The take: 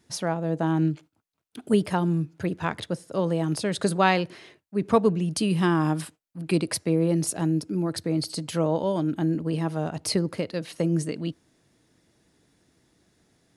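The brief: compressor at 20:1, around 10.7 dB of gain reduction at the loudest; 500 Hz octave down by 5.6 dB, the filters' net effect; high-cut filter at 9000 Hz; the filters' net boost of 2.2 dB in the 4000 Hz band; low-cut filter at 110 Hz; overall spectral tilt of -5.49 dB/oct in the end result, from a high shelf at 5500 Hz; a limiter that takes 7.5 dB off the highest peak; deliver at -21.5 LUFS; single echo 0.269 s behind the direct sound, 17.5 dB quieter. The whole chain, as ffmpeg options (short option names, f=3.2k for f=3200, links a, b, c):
-af "highpass=110,lowpass=9k,equalizer=f=500:t=o:g=-7.5,equalizer=f=4k:t=o:g=5.5,highshelf=f=5.5k:g=-6,acompressor=threshold=-27dB:ratio=20,alimiter=limit=-24dB:level=0:latency=1,aecho=1:1:269:0.133,volume=13dB"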